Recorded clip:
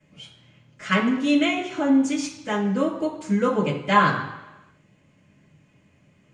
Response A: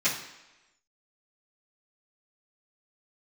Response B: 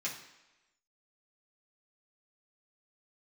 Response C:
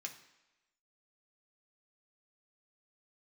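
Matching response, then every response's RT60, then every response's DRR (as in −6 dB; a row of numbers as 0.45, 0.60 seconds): A; 1.0, 1.0, 1.0 seconds; −15.0, −7.0, 1.5 decibels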